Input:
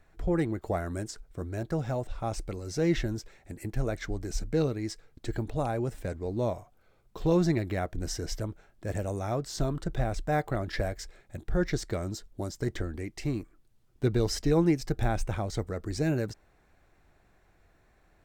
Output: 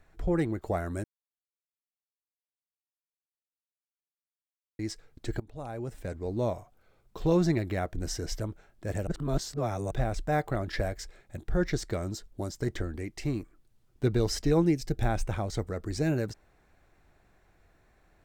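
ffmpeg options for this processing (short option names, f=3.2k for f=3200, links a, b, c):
-filter_complex "[0:a]asettb=1/sr,asplit=3[a][b][c];[a]atrim=end=14.624[d];[b]atrim=start=14.62:end=15.02,asetpts=PTS-STARTPTS,afade=t=in:d=0.004:c=qsin,afade=t=out:st=0.396:d=0.004:c=qsin,equalizer=f=1.1k:w=1.2:g=-9.5[e];[c]atrim=start=15.016[f];[d][e]acrossfade=d=0.004:c1=hsin:c2=qsin[g];[g][f]acrossfade=d=0.004:c1=qsin:c2=hsin,asplit=6[h][i][j][k][l][m];[h]atrim=end=1.04,asetpts=PTS-STARTPTS,afade=t=out:st=1.036:d=0.004:c=hsin[n];[i]atrim=start=1.04:end=4.79,asetpts=PTS-STARTPTS,volume=0[o];[j]atrim=start=4.79:end=5.4,asetpts=PTS-STARTPTS,afade=t=in:d=0.004:c=hsin,afade=t=out:st=0.606:d=0.004:c=hsin:silence=0.1[p];[k]atrim=start=5.4:end=9.072,asetpts=PTS-STARTPTS,afade=t=in:d=0.9:silence=0.1[q];[l]atrim=start=9.068:end=9.912,asetpts=PTS-STARTPTS,areverse[r];[m]atrim=start=9.908[s];[n][o][p][q]concat=n=4:v=0:a=1[t];[t][r]acrossfade=d=0.004:c1=hsin:c2=hsin[u];[u][s]acrossfade=d=0.004:c1=hsin:c2=hsin"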